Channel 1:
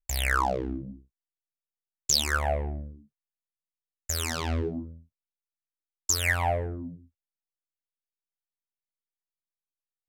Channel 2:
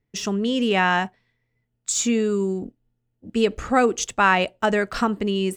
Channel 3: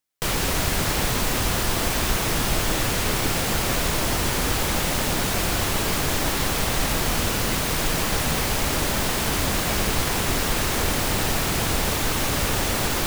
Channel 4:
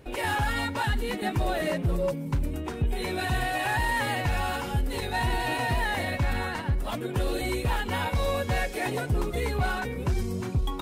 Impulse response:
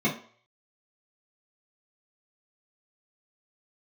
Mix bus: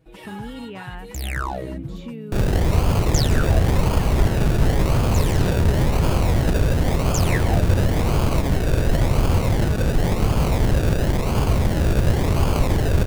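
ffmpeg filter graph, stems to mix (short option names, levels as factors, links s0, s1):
-filter_complex "[0:a]adelay=1050,volume=0.668[s0];[1:a]lowpass=f=3500:w=0.5412,lowpass=f=3500:w=1.3066,acompressor=threshold=0.0794:ratio=6,volume=0.224[s1];[2:a]aecho=1:1:1.9:0.54,acrossover=split=290[s2][s3];[s3]acompressor=threshold=0.0282:ratio=1.5[s4];[s2][s4]amix=inputs=2:normalize=0,acrusher=samples=33:mix=1:aa=0.000001:lfo=1:lforange=19.8:lforate=0.94,adelay=2100,volume=1.12[s5];[3:a]aecho=1:1:6.2:0.89,volume=0.188[s6];[s0][s1][s5][s6]amix=inputs=4:normalize=0,equalizer=f=100:t=o:w=2.8:g=7"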